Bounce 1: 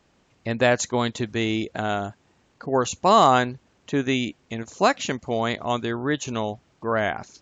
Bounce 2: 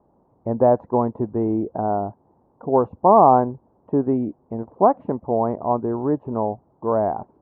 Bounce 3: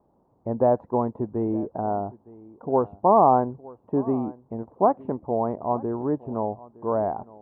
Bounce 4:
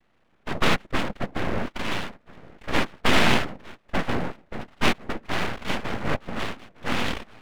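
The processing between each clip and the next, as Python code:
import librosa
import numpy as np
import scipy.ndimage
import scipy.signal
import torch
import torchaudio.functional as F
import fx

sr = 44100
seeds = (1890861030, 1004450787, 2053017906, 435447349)

y1 = scipy.signal.sosfilt(scipy.signal.cheby1(4, 1.0, 950.0, 'lowpass', fs=sr, output='sos'), x)
y1 = fx.tilt_eq(y1, sr, slope=1.5)
y1 = y1 * librosa.db_to_amplitude(6.5)
y2 = y1 + 10.0 ** (-21.0 / 20.0) * np.pad(y1, (int(913 * sr / 1000.0), 0))[:len(y1)]
y2 = y2 * librosa.db_to_amplitude(-4.0)
y3 = fx.noise_vocoder(y2, sr, seeds[0], bands=3)
y3 = np.abs(y3)
y3 = fx.peak_eq(y3, sr, hz=220.0, db=7.0, octaves=0.89)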